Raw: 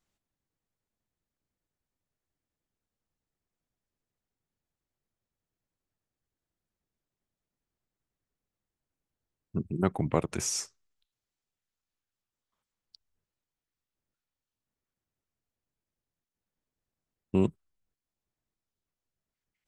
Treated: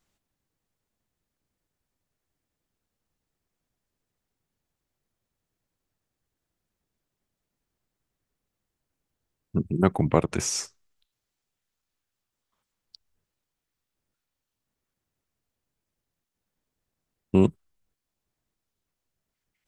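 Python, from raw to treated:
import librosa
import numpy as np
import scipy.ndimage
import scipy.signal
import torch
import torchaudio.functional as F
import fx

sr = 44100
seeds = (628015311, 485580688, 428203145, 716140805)

y = fx.high_shelf(x, sr, hz=7400.0, db=-7.5, at=(10.12, 10.64))
y = F.gain(torch.from_numpy(y), 6.0).numpy()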